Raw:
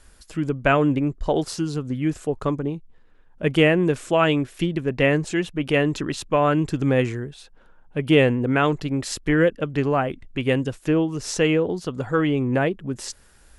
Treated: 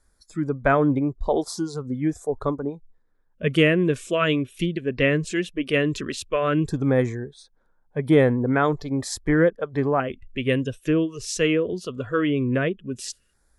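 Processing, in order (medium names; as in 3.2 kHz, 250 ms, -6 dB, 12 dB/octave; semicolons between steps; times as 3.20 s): LFO notch square 0.15 Hz 830–2800 Hz; spectral noise reduction 13 dB; 11.25–11.73 s: three bands expanded up and down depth 40%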